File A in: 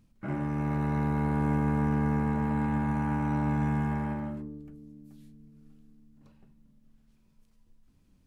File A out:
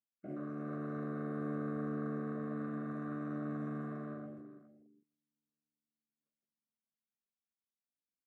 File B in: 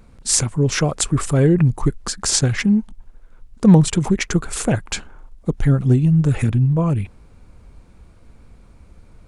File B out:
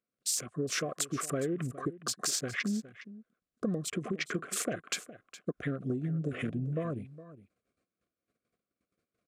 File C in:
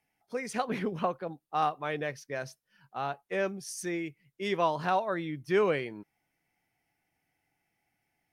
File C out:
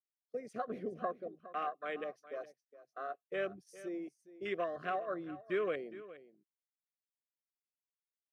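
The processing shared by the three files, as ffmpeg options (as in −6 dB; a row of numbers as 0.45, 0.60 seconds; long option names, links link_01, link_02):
-af "agate=range=-14dB:threshold=-42dB:ratio=16:detection=peak,highpass=280,afwtdn=0.0178,acompressor=threshold=-24dB:ratio=10,asuperstop=centerf=890:order=12:qfactor=3.2,aecho=1:1:413:0.158,volume=-5dB"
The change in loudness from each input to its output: −11.5, −16.5, −8.5 LU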